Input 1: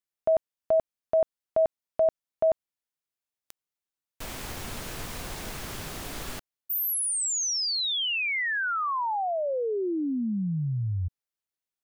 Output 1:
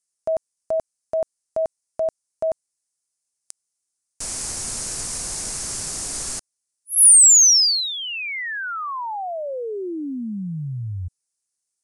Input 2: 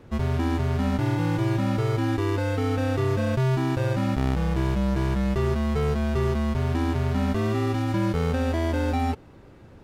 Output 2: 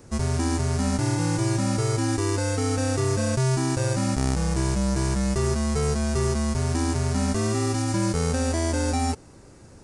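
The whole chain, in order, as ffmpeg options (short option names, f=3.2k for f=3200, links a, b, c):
-af "aresample=22050,aresample=44100,aexciter=amount=6.1:drive=6.9:freq=4.9k"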